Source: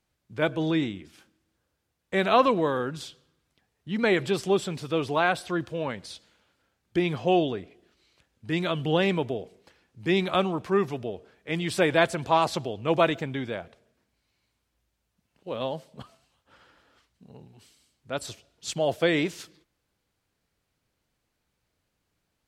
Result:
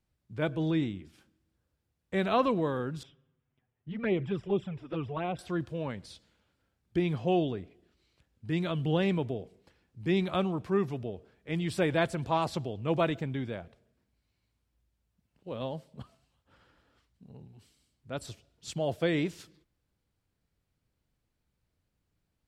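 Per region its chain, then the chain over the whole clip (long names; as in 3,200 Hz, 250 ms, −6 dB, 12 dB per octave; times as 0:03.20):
0:03.03–0:05.39: Savitzky-Golay smoothing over 25 samples + flanger swept by the level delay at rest 8 ms, full sweep at −18.5 dBFS
whole clip: low-shelf EQ 250 Hz +11 dB; notch filter 6,300 Hz, Q 25; level −8 dB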